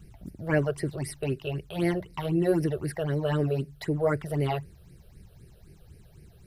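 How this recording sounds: phasing stages 8, 3.9 Hz, lowest notch 260–1100 Hz

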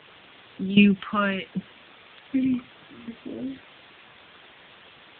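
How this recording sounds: phasing stages 2, 0.64 Hz, lowest notch 440–1200 Hz; tremolo saw down 1.3 Hz, depth 85%; a quantiser's noise floor 8-bit, dither triangular; AMR-NB

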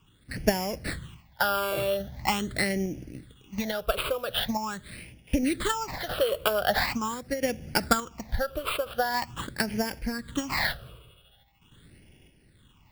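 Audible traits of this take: aliases and images of a low sample rate 6200 Hz, jitter 0%; phasing stages 8, 0.43 Hz, lowest notch 240–1200 Hz; random-step tremolo 3.5 Hz

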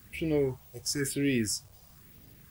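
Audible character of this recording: phasing stages 4, 1 Hz, lowest notch 270–1300 Hz; a quantiser's noise floor 10-bit, dither none

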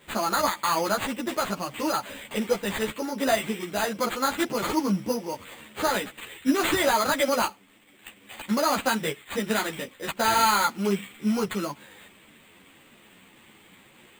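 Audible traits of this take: aliases and images of a low sample rate 5500 Hz, jitter 0%; a shimmering, thickened sound

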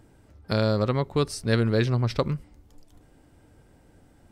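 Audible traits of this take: noise floor -58 dBFS; spectral tilt -6.0 dB/oct

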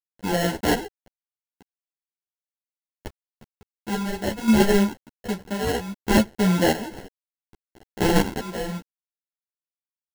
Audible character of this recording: aliases and images of a low sample rate 1200 Hz, jitter 0%; chopped level 0.67 Hz, depth 65%, duty 50%; a quantiser's noise floor 8-bit, dither none; a shimmering, thickened sound

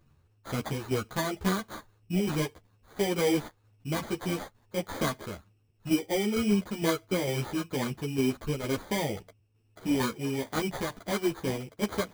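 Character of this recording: aliases and images of a low sample rate 2700 Hz, jitter 0%; tremolo saw down 2.2 Hz, depth 50%; a shimmering, thickened sound

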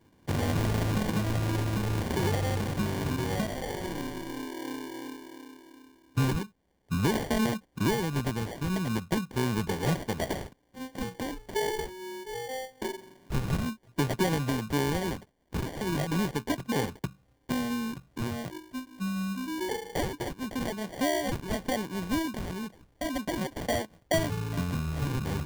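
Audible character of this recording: phasing stages 4, 0.43 Hz, lowest notch 620–4000 Hz; aliases and images of a low sample rate 1300 Hz, jitter 0%

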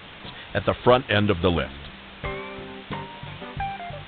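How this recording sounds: a quantiser's noise floor 6-bit, dither triangular; G.726

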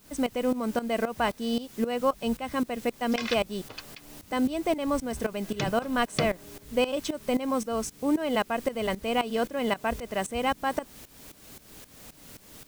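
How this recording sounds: a quantiser's noise floor 8-bit, dither triangular; tremolo saw up 3.8 Hz, depth 85%

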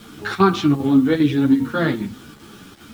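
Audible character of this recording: chopped level 2.5 Hz, depth 60%, duty 85%; a quantiser's noise floor 8-bit, dither none; a shimmering, thickened sound

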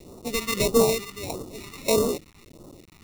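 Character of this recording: aliases and images of a low sample rate 1600 Hz, jitter 0%; tremolo triangle 1.6 Hz, depth 40%; a quantiser's noise floor 8-bit, dither none; phasing stages 2, 1.6 Hz, lowest notch 520–2100 Hz

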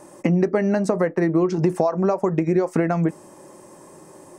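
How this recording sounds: noise floor -47 dBFS; spectral tilt -6.0 dB/oct

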